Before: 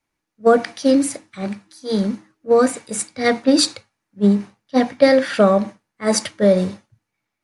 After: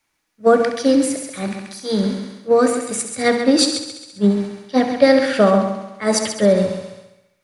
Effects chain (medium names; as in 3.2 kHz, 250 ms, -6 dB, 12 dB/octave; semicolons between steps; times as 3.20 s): multi-head delay 67 ms, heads first and second, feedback 42%, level -10 dB; tape noise reduction on one side only encoder only